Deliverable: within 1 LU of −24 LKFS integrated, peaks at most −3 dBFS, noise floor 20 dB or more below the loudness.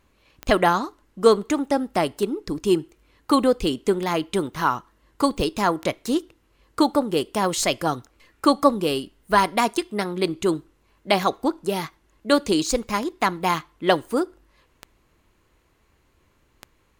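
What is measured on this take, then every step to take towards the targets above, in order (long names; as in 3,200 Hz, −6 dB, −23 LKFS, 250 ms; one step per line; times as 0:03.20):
number of clicks 10; integrated loudness −23.0 LKFS; sample peak −3.0 dBFS; target loudness −24.0 LKFS
→ click removal
level −1 dB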